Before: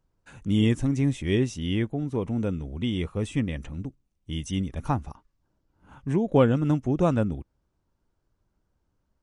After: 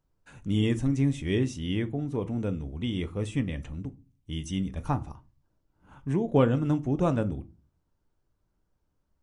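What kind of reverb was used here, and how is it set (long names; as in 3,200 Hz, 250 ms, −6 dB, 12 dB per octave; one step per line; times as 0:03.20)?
rectangular room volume 140 cubic metres, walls furnished, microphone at 0.41 metres
level −3 dB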